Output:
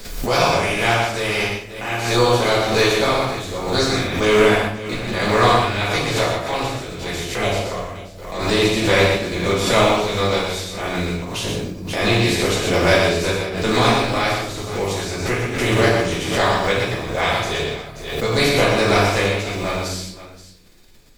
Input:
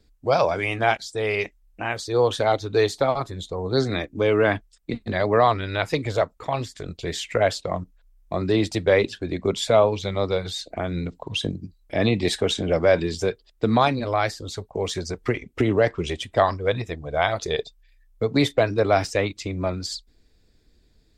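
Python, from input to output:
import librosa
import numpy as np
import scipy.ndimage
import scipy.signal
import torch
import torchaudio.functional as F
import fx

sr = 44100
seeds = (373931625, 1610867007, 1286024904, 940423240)

p1 = fx.spec_flatten(x, sr, power=0.51)
p2 = fx.env_flanger(p1, sr, rest_ms=11.5, full_db=-15.5, at=(7.16, 8.39))
p3 = p2 + fx.echo_multitap(p2, sr, ms=(61, 120, 531), db=(-8.5, -5.0, -15.5), dry=0)
p4 = fx.room_shoebox(p3, sr, seeds[0], volume_m3=79.0, walls='mixed', distance_m=1.9)
p5 = fx.pre_swell(p4, sr, db_per_s=58.0)
y = F.gain(torch.from_numpy(p5), -7.0).numpy()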